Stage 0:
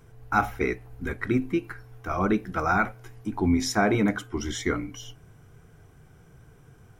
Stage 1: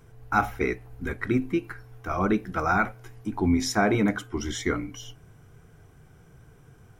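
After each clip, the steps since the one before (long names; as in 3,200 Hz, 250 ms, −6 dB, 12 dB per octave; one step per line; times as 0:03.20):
no processing that can be heard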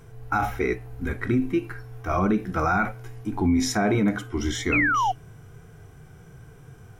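harmonic and percussive parts rebalanced harmonic +9 dB
brickwall limiter −13 dBFS, peak gain reduction 8.5 dB
sound drawn into the spectrogram fall, 0:04.72–0:05.12, 710–2,700 Hz −21 dBFS
level −1 dB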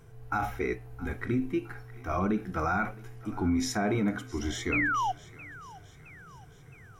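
feedback echo with a high-pass in the loop 666 ms, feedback 57%, high-pass 590 Hz, level −18 dB
level −6 dB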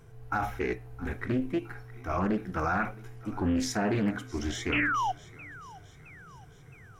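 highs frequency-modulated by the lows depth 0.36 ms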